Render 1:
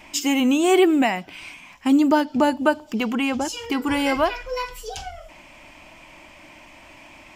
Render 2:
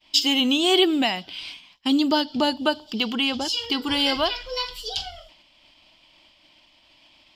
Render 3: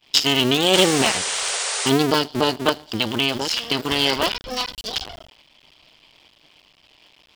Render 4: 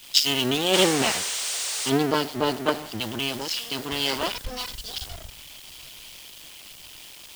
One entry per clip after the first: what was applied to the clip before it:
expander -37 dBFS; high-order bell 3.9 kHz +16 dB 1 oct; trim -4 dB
cycle switcher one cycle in 2, muted; painted sound noise, 0.73–1.90 s, 380–9700 Hz -30 dBFS; trim +5 dB
jump at every zero crossing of -19 dBFS; three bands expanded up and down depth 100%; trim -8.5 dB

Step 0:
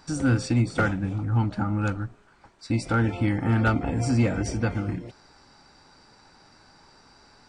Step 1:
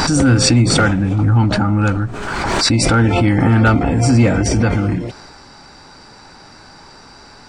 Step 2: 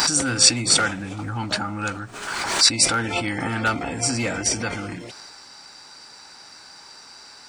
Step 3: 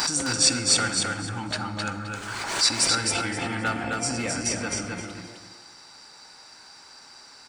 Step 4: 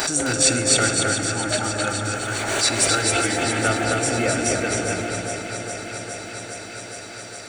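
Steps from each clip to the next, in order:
in parallel at -1 dB: compression, threshold -31 dBFS, peak gain reduction 13 dB; on the sum: transient shaper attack -3 dB, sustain +3 dB; swell ahead of each attack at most 24 dB/s; trim +8 dB
tilt EQ +3.5 dB/octave; trim -7 dB
feedback delay 262 ms, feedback 23%, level -3.5 dB; on a send at -12 dB: reverberation RT60 1.3 s, pre-delay 38 ms; on the sum: trim -5.5 dB
graphic EQ with 31 bands 200 Hz -8 dB, 400 Hz +7 dB, 630 Hz +8 dB, 1 kHz -10 dB, 5 kHz -11 dB; echo whose repeats swap between lows and highs 206 ms, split 1.8 kHz, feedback 87%, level -7 dB; tape noise reduction on one side only encoder only; trim +5 dB

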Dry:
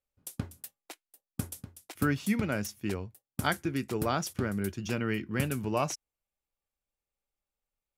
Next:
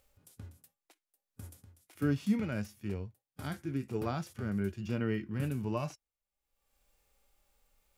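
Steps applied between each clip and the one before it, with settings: upward compressor, threshold -50 dBFS; harmonic-percussive split percussive -18 dB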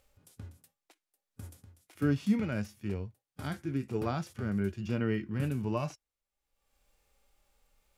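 treble shelf 12 kHz -8 dB; trim +2 dB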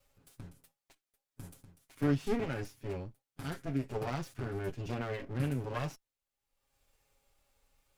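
comb filter that takes the minimum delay 7.3 ms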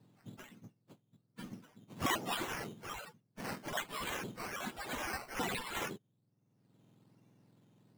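spectrum inverted on a logarithmic axis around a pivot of 1.5 kHz; decimation with a swept rate 10×, swing 60% 1.2 Hz; trim +2.5 dB

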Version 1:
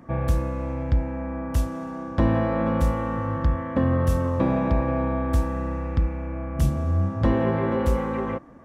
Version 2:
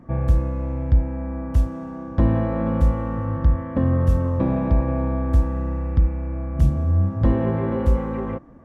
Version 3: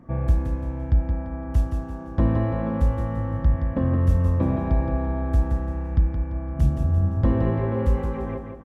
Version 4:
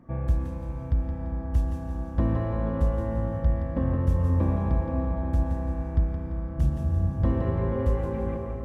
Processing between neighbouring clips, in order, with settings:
tilt EQ -2 dB/octave; trim -3 dB
feedback delay 171 ms, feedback 40%, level -6.5 dB; trim -2.5 dB
plate-style reverb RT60 4.9 s, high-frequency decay 0.55×, pre-delay 105 ms, DRR 5 dB; trim -4.5 dB

